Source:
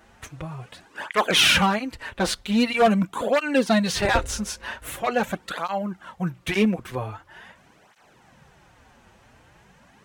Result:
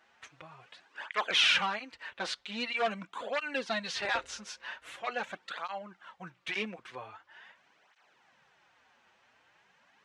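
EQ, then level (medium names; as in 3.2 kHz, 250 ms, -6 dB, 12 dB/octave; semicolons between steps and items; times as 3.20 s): band-pass filter 6.1 kHz, Q 0.51; tape spacing loss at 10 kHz 25 dB; +3.0 dB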